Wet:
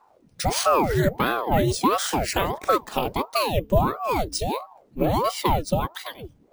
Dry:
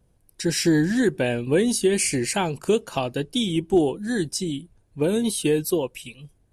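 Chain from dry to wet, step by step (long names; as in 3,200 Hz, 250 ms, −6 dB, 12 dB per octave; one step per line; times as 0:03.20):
hum removal 85.86 Hz, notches 2
in parallel at +2.5 dB: downward compressor, threshold −30 dBFS, peak gain reduction 15.5 dB
on the sum: bad sample-rate conversion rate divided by 3×, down filtered, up hold
ring modulator whose carrier an LFO sweeps 530 Hz, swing 80%, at 1.5 Hz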